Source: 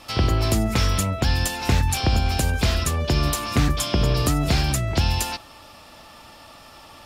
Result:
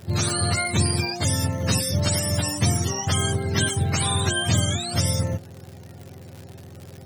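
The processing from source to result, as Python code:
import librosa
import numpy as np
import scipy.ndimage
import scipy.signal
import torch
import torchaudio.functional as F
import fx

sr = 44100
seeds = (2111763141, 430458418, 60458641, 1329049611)

y = fx.octave_mirror(x, sr, pivot_hz=680.0)
y = fx.dmg_crackle(y, sr, seeds[0], per_s=120.0, level_db=-33.0)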